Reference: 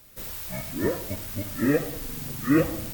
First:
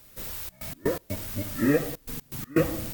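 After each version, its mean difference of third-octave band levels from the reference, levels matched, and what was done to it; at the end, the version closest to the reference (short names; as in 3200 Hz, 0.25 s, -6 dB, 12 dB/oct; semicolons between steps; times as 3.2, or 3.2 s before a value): 4.5 dB: step gate "xxxx.x.x.xxx" 123 bpm -24 dB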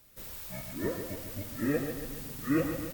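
1.5 dB: feedback echo 0.14 s, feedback 53%, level -8 dB; gain -7.5 dB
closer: second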